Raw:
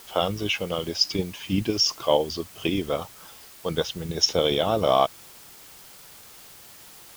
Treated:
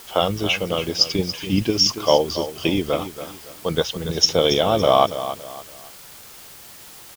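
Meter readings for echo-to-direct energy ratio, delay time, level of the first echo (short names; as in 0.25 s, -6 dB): -11.5 dB, 0.281 s, -12.0 dB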